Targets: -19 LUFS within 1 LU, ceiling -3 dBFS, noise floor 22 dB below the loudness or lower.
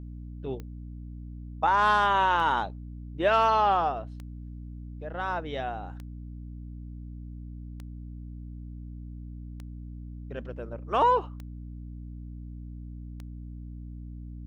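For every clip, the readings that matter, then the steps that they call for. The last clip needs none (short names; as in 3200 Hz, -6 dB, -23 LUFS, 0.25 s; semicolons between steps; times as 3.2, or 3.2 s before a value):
clicks 8; hum 60 Hz; harmonics up to 300 Hz; hum level -38 dBFS; loudness -26.5 LUFS; peak -12.0 dBFS; loudness target -19.0 LUFS
-> de-click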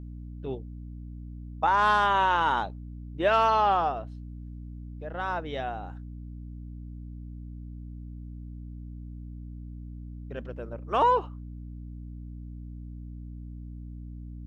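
clicks 0; hum 60 Hz; harmonics up to 300 Hz; hum level -38 dBFS
-> notches 60/120/180/240/300 Hz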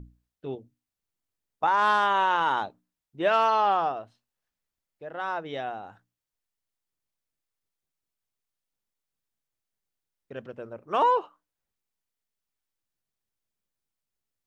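hum none; loudness -25.0 LUFS; peak -12.5 dBFS; loudness target -19.0 LUFS
-> gain +6 dB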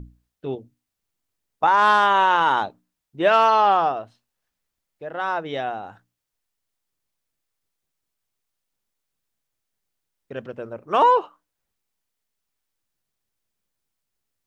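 loudness -19.0 LUFS; peak -6.5 dBFS; noise floor -82 dBFS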